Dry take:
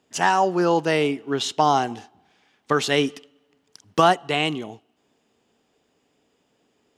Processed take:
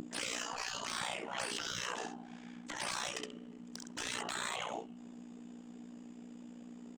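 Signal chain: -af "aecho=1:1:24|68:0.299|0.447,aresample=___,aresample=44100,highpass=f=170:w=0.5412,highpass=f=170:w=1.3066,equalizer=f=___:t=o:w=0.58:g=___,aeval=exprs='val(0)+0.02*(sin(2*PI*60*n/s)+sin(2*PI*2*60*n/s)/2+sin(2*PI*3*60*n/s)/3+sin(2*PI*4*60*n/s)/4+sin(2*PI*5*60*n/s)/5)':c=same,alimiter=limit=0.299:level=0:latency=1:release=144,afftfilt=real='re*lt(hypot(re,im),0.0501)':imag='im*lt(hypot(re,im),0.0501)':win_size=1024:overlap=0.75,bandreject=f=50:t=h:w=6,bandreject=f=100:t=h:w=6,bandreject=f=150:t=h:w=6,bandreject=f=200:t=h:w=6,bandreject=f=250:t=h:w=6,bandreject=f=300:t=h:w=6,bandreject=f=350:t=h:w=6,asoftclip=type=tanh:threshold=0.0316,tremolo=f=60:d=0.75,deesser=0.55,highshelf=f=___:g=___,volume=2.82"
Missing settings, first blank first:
22050, 7.5k, 12.5, 3.2k, -12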